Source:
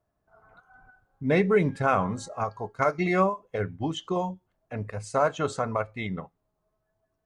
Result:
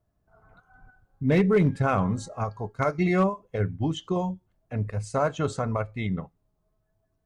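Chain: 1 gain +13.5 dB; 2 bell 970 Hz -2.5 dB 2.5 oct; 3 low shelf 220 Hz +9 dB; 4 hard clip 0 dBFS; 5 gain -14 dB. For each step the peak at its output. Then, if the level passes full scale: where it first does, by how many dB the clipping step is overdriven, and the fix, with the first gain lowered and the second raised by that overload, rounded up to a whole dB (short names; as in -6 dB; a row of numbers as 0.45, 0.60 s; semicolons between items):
+4.5, +2.0, +4.0, 0.0, -14.0 dBFS; step 1, 4.0 dB; step 1 +9.5 dB, step 5 -10 dB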